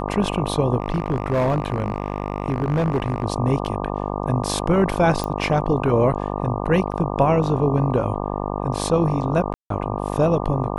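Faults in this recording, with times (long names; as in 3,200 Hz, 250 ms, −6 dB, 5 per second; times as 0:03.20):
mains buzz 50 Hz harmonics 24 −26 dBFS
0:00.80–0:03.24: clipping −15.5 dBFS
0:05.24: click −12 dBFS
0:06.92–0:06.93: drop-out 5.7 ms
0:09.54–0:09.70: drop-out 163 ms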